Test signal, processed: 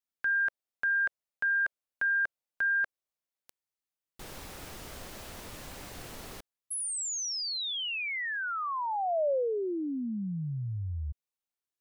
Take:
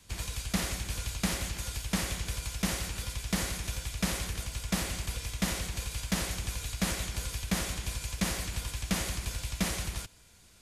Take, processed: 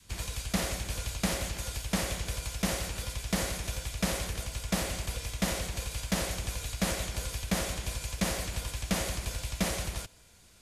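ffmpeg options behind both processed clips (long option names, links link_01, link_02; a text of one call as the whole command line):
ffmpeg -i in.wav -af "adynamicequalizer=threshold=0.00224:dfrequency=580:dqfactor=1.7:tfrequency=580:tqfactor=1.7:attack=5:release=100:ratio=0.375:range=3.5:mode=boostabove:tftype=bell" out.wav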